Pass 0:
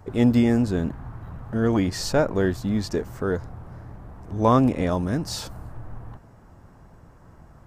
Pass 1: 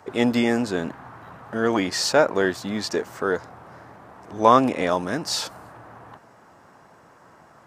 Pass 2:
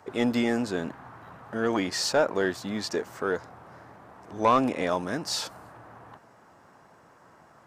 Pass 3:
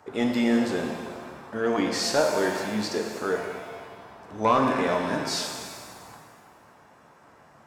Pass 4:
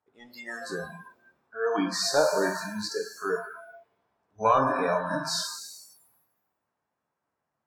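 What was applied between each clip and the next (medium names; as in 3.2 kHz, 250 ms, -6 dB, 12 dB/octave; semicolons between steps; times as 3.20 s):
frequency weighting A; trim +6 dB
saturation -7.5 dBFS, distortion -16 dB; trim -4 dB
pitch-shifted reverb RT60 1.6 s, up +7 st, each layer -8 dB, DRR 2 dB; trim -1 dB
spectral noise reduction 29 dB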